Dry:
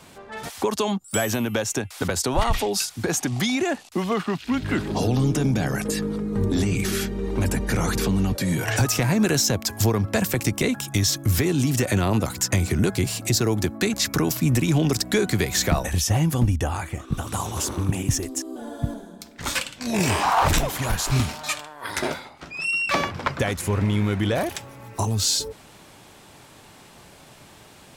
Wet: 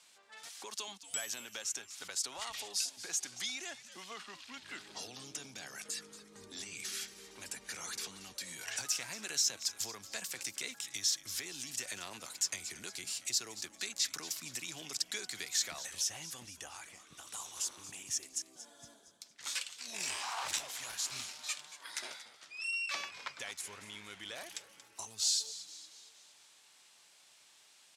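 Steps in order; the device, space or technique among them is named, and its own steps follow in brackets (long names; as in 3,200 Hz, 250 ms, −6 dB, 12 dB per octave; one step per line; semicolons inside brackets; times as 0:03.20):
echo with shifted repeats 231 ms, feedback 51%, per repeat −140 Hz, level −14.5 dB
piezo pickup straight into a mixer (low-pass filter 6,500 Hz 12 dB per octave; first difference)
level −4 dB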